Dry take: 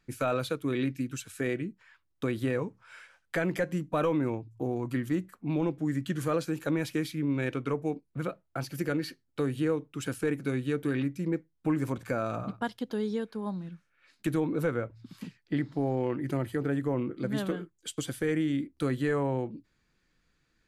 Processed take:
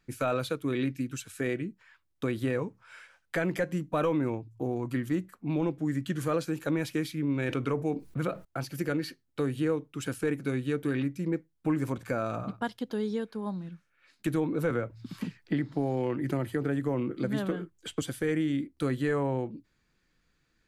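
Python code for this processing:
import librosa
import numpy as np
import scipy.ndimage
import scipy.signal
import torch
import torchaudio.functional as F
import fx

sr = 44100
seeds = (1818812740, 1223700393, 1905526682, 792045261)

y = fx.env_flatten(x, sr, amount_pct=50, at=(7.49, 8.45))
y = fx.band_squash(y, sr, depth_pct=70, at=(14.7, 18.02))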